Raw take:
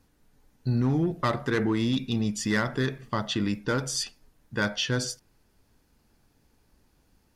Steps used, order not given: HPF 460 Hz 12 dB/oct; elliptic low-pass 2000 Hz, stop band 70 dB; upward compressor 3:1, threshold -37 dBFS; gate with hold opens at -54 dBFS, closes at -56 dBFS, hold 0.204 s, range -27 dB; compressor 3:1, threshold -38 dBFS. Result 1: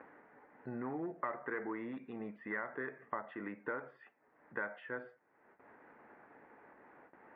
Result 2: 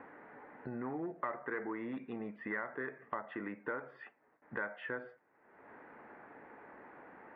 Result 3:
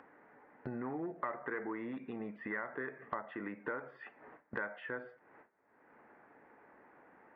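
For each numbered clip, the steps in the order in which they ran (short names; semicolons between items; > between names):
gate with hold > upward compressor > HPF > compressor > elliptic low-pass; HPF > upward compressor > gate with hold > elliptic low-pass > compressor; HPF > gate with hold > compressor > elliptic low-pass > upward compressor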